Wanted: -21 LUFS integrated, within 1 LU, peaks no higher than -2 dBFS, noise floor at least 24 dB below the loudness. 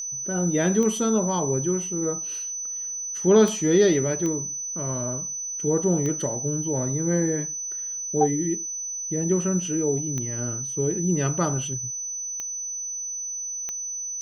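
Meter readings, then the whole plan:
clicks 7; steady tone 6000 Hz; tone level -29 dBFS; loudness -24.5 LUFS; peak -7.5 dBFS; loudness target -21.0 LUFS
-> de-click; notch 6000 Hz, Q 30; gain +3.5 dB

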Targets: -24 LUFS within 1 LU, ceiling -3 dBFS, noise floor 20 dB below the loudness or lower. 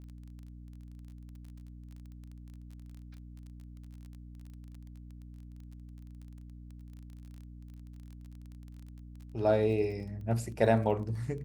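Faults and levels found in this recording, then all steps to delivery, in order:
ticks 24/s; hum 60 Hz; harmonics up to 300 Hz; hum level -45 dBFS; loudness -30.5 LUFS; peak -11.5 dBFS; loudness target -24.0 LUFS
-> de-click; de-hum 60 Hz, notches 5; gain +6.5 dB

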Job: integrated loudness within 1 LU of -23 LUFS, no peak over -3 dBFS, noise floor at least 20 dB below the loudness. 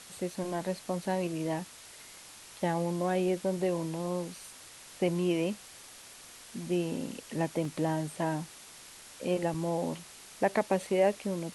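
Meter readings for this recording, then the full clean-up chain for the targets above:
dropouts 2; longest dropout 2.5 ms; noise floor -51 dBFS; noise floor target -53 dBFS; loudness -32.5 LUFS; peak -13.5 dBFS; loudness target -23.0 LUFS
-> interpolate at 7.65/9.54, 2.5 ms; denoiser 6 dB, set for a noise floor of -51 dBFS; gain +9.5 dB

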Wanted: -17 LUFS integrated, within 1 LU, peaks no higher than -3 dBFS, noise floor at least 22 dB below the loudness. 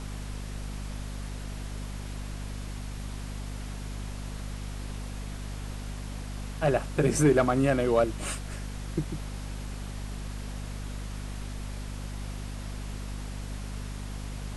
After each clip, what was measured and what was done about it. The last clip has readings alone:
hum 50 Hz; harmonics up to 250 Hz; hum level -34 dBFS; noise floor -38 dBFS; noise floor target -55 dBFS; loudness -33.0 LUFS; peak -11.0 dBFS; loudness target -17.0 LUFS
-> notches 50/100/150/200/250 Hz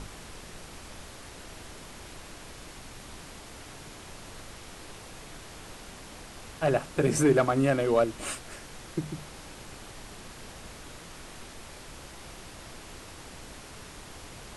hum none; noise floor -46 dBFS; noise floor target -50 dBFS
-> noise print and reduce 6 dB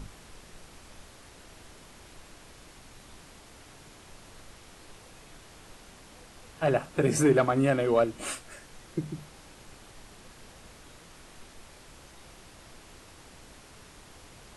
noise floor -52 dBFS; loudness -27.0 LUFS; peak -11.5 dBFS; loudness target -17.0 LUFS
-> gain +10 dB; limiter -3 dBFS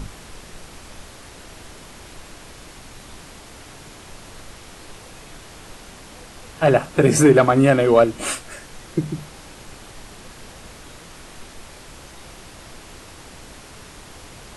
loudness -17.5 LUFS; peak -3.0 dBFS; noise floor -42 dBFS

